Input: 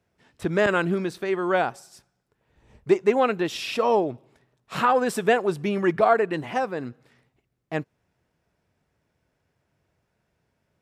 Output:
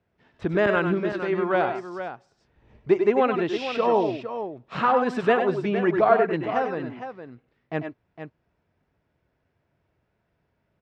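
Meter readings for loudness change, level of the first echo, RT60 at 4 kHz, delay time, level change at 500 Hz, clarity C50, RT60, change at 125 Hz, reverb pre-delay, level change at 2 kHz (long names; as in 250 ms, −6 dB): 0.0 dB, −7.0 dB, no reverb audible, 97 ms, +0.5 dB, no reverb audible, no reverb audible, +0.5 dB, no reverb audible, −0.5 dB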